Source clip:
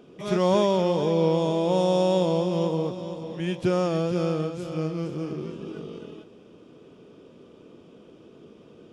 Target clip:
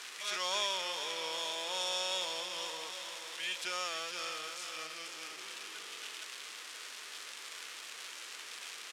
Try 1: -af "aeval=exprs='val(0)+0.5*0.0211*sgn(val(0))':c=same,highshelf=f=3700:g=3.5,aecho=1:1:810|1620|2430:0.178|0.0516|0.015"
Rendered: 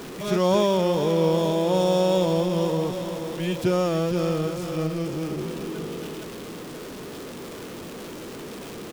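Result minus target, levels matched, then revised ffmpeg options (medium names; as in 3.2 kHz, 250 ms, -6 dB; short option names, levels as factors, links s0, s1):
4 kHz band -13.5 dB
-af "aeval=exprs='val(0)+0.5*0.0211*sgn(val(0))':c=same,asuperpass=centerf=4200:order=4:qfactor=0.53,highshelf=f=3700:g=3.5,aecho=1:1:810|1620|2430:0.178|0.0516|0.015"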